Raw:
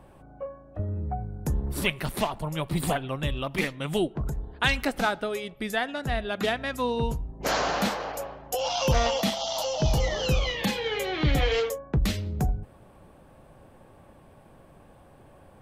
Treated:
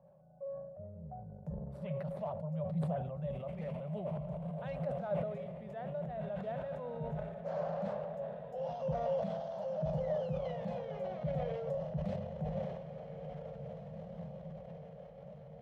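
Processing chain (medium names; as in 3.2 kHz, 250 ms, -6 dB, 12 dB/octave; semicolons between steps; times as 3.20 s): on a send: echo that smears into a reverb 1900 ms, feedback 50%, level -8 dB; on the sum: transient shaper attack -4 dB, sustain +9 dB; two resonant band-passes 310 Hz, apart 1.8 oct; decay stretcher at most 44 dB/s; trim -3 dB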